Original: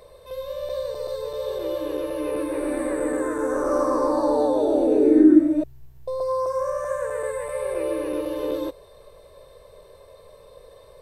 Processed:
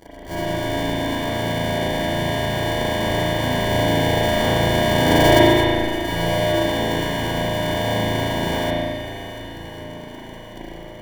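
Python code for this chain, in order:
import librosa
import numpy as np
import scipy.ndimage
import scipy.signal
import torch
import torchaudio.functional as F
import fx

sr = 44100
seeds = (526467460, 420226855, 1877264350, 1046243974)

p1 = np.r_[np.sort(x[:len(x) // 128 * 128].reshape(-1, 128), axis=1).ravel(), x[len(x) // 128 * 128:]]
p2 = fx.fuzz(p1, sr, gain_db=41.0, gate_db=-44.0)
p3 = p1 + F.gain(torch.from_numpy(p2), -11.0).numpy()
p4 = fx.sample_hold(p3, sr, seeds[0], rate_hz=1300.0, jitter_pct=0)
p5 = p4 + fx.echo_swing(p4, sr, ms=1136, ratio=1.5, feedback_pct=45, wet_db=-14, dry=0)
p6 = fx.rev_spring(p5, sr, rt60_s=1.8, pass_ms=(36,), chirp_ms=60, drr_db=-9.5)
y = F.gain(torch.from_numpy(p6), -6.5).numpy()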